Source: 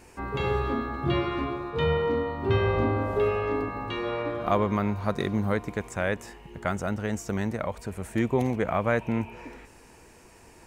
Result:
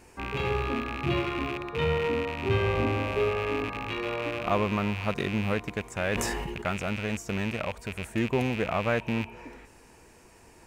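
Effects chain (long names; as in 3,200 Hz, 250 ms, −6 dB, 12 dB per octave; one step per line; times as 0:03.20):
loose part that buzzes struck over −37 dBFS, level −22 dBFS
0:06.00–0:06.62: level that may fall only so fast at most 20 dB per second
level −2 dB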